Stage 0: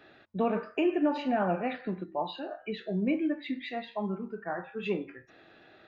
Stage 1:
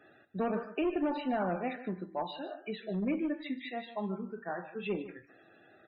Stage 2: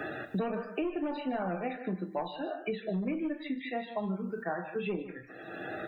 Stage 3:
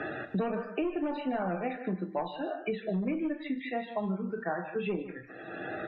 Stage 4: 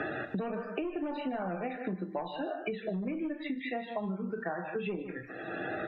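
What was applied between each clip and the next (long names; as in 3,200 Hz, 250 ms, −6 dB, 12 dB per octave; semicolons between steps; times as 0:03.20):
asymmetric clip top −26 dBFS, bottom −21 dBFS; spectral peaks only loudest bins 64; single-tap delay 151 ms −14.5 dB; level −3 dB
on a send at −8.5 dB: convolution reverb, pre-delay 6 ms; on the sum: multiband upward and downward compressor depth 100%; level −1.5 dB
low-pass filter 3,700 Hz 12 dB per octave; level +1.5 dB
downward compressor 4 to 1, threshold −36 dBFS, peak gain reduction 9 dB; level +3.5 dB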